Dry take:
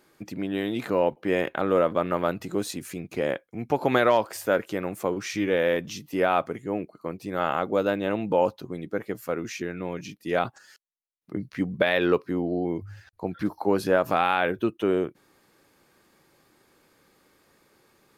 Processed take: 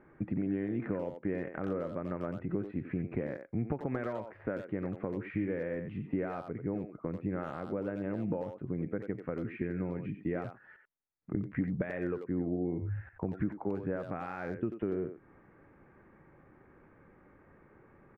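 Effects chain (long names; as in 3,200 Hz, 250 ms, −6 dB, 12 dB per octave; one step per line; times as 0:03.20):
downward compressor 5 to 1, threshold −34 dBFS, peak gain reduction 16.5 dB
Butterworth low-pass 2,100 Hz 36 dB per octave
low-shelf EQ 200 Hz +12 dB
far-end echo of a speakerphone 90 ms, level −7 dB
dynamic equaliser 920 Hz, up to −6 dB, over −49 dBFS, Q 0.9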